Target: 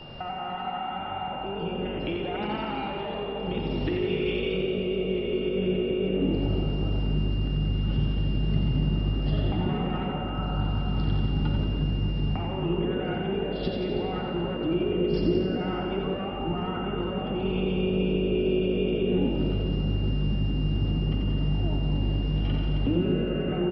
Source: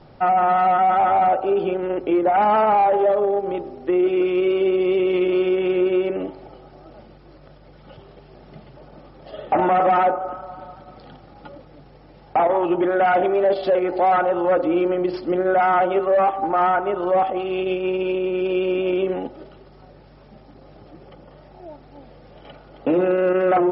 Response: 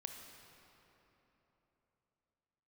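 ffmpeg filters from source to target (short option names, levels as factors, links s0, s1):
-filter_complex "[0:a]alimiter=limit=0.0891:level=0:latency=1:release=291,acompressor=threshold=0.0355:ratio=6,asettb=1/sr,asplit=3[s0][s1][s2];[s0]atrim=end=1.854[s3];[s1]atrim=start=1.85:end=4.57,asetpts=PTS-STARTPTS,afade=t=in:d=0.004:c=qsin,afade=t=out:st=2.716:d=0.004:c=qsin,equalizer=f=3500:w=0.58:g=12[s4];[s2]atrim=start=4.566[s5];[s3][s4]acrossfade=d=0.004:c1=hsin:c2=qsin[s6];[s6][s5]acrossfade=d=0.004:c1=qsin:c2=hsin,acrossover=split=310|3000[s7][s8][s9];[s8]acompressor=threshold=0.0126:ratio=3[s10];[s7][s10][s9]amix=inputs=3:normalize=0,asubboost=boost=12:cutoff=160,asplit=9[s11][s12][s13][s14][s15][s16][s17][s18][s19];[s12]adelay=89,afreqshift=52,volume=0.501[s20];[s13]adelay=178,afreqshift=104,volume=0.292[s21];[s14]adelay=267,afreqshift=156,volume=0.168[s22];[s15]adelay=356,afreqshift=208,volume=0.0977[s23];[s16]adelay=445,afreqshift=260,volume=0.0569[s24];[s17]adelay=534,afreqshift=312,volume=0.0327[s25];[s18]adelay=623,afreqshift=364,volume=0.0191[s26];[s19]adelay=712,afreqshift=416,volume=0.0111[s27];[s11][s20][s21][s22][s23][s24][s25][s26][s27]amix=inputs=9:normalize=0,aeval=exprs='val(0)+0.00447*sin(2*PI*2800*n/s)':c=same[s28];[1:a]atrim=start_sample=2205[s29];[s28][s29]afir=irnorm=-1:irlink=0,volume=2.24"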